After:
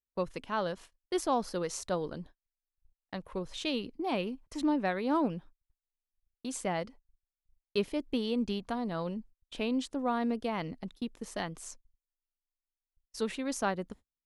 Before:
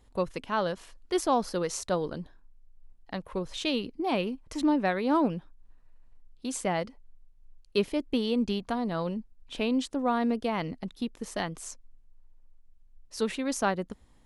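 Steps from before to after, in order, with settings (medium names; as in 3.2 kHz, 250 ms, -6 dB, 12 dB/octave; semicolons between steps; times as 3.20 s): gate -45 dBFS, range -38 dB; trim -4 dB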